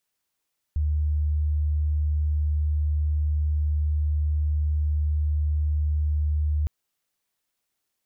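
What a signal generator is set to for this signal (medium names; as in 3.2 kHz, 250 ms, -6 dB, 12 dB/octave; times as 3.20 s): tone sine 75.2 Hz -20.5 dBFS 5.91 s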